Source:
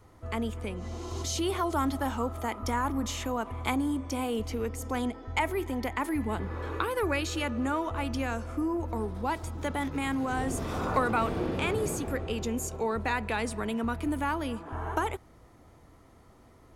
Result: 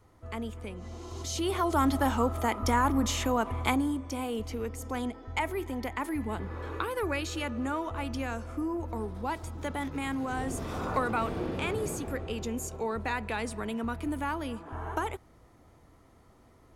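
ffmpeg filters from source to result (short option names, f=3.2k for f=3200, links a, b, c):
-af "volume=4dB,afade=t=in:st=1.19:d=0.79:silence=0.375837,afade=t=out:st=3.53:d=0.47:silence=0.473151"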